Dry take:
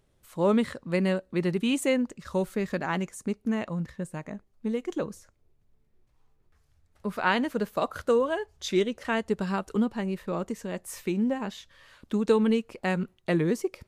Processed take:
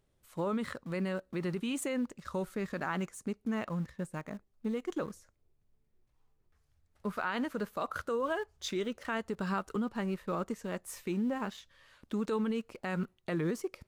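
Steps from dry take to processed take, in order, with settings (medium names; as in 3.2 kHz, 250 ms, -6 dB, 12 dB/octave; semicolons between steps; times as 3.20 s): in parallel at -9 dB: small samples zeroed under -37 dBFS; on the sum: peak limiter -19.5 dBFS, peak gain reduction 11.5 dB; dynamic bell 1.3 kHz, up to +7 dB, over -49 dBFS, Q 2.3; trim -6.5 dB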